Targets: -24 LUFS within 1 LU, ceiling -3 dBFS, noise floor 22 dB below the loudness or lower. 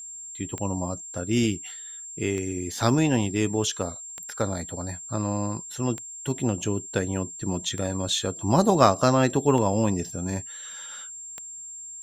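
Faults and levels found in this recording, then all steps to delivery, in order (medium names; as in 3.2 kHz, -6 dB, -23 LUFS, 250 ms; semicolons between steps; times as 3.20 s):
clicks found 7; steady tone 7.4 kHz; tone level -37 dBFS; loudness -26.0 LUFS; peak level -2.5 dBFS; loudness target -24.0 LUFS
-> de-click; band-stop 7.4 kHz, Q 30; trim +2 dB; peak limiter -3 dBFS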